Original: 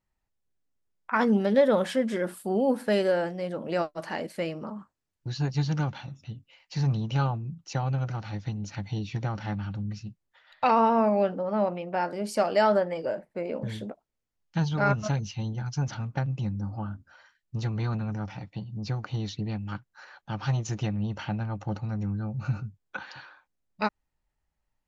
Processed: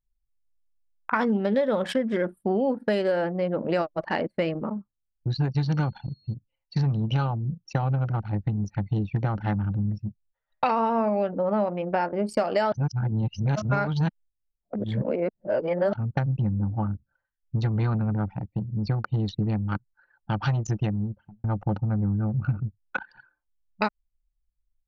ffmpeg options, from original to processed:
-filter_complex "[0:a]asettb=1/sr,asplit=3[s0][s1][s2];[s0]atrim=end=5.624[s3];[s1]atrim=start=5.62:end=6.34,asetpts=PTS-STARTPTS,afade=t=in:d=0.004:c=qsin,afade=t=out:st=0.716:d=0.004:c=qsin,aeval=exprs='val(0)+0.00355*sin(2*PI*4300*n/s)':c=same[s4];[s2]atrim=start=6.336[s5];[s3][s4]acrossfade=d=0.004:c1=hsin:c2=qsin[s6];[s6][s5]acrossfade=d=0.004:c1=qsin:c2=hsin,asplit=4[s7][s8][s9][s10];[s7]atrim=end=12.722[s11];[s8]atrim=start=12.718:end=15.932,asetpts=PTS-STARTPTS,areverse[s12];[s9]atrim=start=15.928:end=21.44,asetpts=PTS-STARTPTS,afade=t=out:st=4.702:d=0.81[s13];[s10]atrim=start=21.44,asetpts=PTS-STARTPTS,afade=t=in:d=0.004:c=hsin[s14];[s11][s12]acrossfade=d=0.004:c1=hsin:c2=hsin[s15];[s13][s14]concat=n=2:v=0:a=1[s16];[s15][s16]acrossfade=d=0.004:c1=hsin:c2=hsin,anlmdn=3.98,equalizer=f=6400:t=o:w=0.39:g=-4,acompressor=threshold=0.0355:ratio=6,volume=2.51"

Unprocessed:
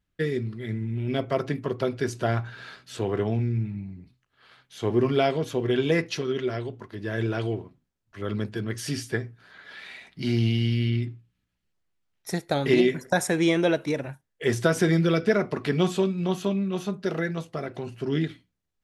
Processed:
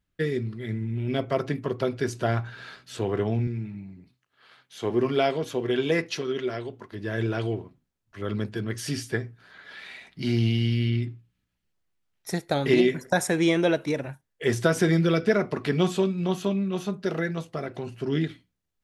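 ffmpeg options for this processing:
-filter_complex "[0:a]asettb=1/sr,asplit=3[s0][s1][s2];[s0]atrim=end=3.474[s3];[s1]atrim=start=3.47:end=6.92,asetpts=PTS-STARTPTS,afade=t=in:d=0.004:c=qsin,afade=t=out:st=3.446:d=0.004:c=qsin,highpass=f=200:p=1[s4];[s2]atrim=start=6.916[s5];[s3][s4]acrossfade=d=0.004:c1=hsin:c2=qsin[s6];[s6][s5]acrossfade=d=0.004:c1=qsin:c2=hsin"

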